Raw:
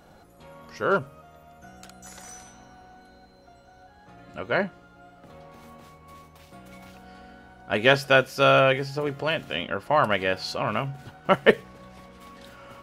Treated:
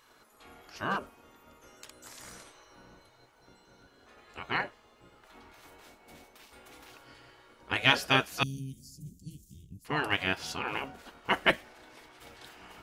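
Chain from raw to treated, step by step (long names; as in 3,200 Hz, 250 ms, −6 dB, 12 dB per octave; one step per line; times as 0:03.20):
gate on every frequency bin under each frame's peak −10 dB weak
0:08.43–0:09.85: elliptic band-stop filter 200–6,800 Hz, stop band 80 dB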